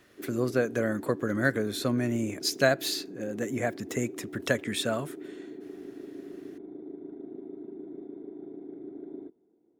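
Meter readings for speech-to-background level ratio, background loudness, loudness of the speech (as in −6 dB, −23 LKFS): 13.5 dB, −43.0 LKFS, −29.5 LKFS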